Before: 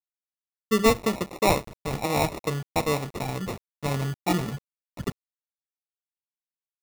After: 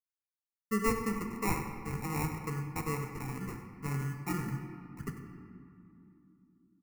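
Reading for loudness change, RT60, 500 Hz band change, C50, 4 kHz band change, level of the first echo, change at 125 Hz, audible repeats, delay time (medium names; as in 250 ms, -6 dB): -9.0 dB, 2.8 s, -13.0 dB, 5.5 dB, -17.5 dB, -13.5 dB, -5.5 dB, 1, 97 ms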